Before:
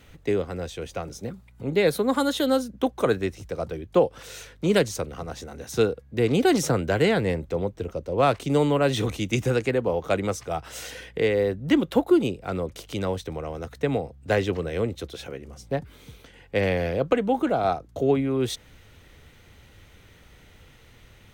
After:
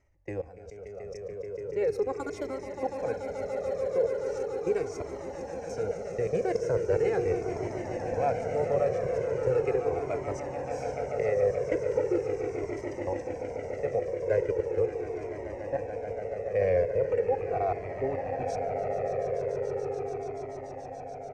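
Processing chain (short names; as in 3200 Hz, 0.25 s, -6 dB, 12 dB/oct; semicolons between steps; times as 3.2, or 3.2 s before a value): EQ curve 100 Hz 0 dB, 240 Hz -10 dB, 480 Hz +7 dB, 780 Hz +2 dB, 1200 Hz -7 dB, 2300 Hz -2 dB, 3500 Hz -25 dB, 5400 Hz -2 dB, 7900 Hz -8 dB, 11000 Hz -22 dB; level quantiser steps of 22 dB; on a send: swelling echo 0.144 s, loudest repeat 8, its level -11 dB; on the sum: downsampling 32000 Hz; cascading flanger falling 0.39 Hz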